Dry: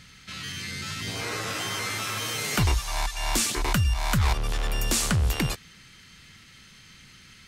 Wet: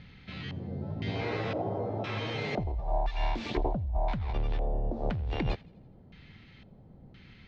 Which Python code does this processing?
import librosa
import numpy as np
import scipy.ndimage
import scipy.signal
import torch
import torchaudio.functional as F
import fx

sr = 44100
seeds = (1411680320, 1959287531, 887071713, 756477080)

y = fx.band_shelf(x, sr, hz=1800.0, db=-12.5, octaves=1.7)
y = fx.over_compress(y, sr, threshold_db=-28.0, ratio=-1.0)
y = fx.filter_lfo_lowpass(y, sr, shape='square', hz=0.98, low_hz=660.0, high_hz=2400.0, q=2.3)
y = fx.air_absorb(y, sr, metres=190.0)
y = fx.echo_thinned(y, sr, ms=83, feedback_pct=56, hz=910.0, wet_db=-24.0)